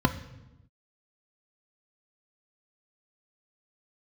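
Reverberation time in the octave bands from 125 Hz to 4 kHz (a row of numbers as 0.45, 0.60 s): 1.3, 1.3, 1.0, 0.90, 0.85, 0.75 s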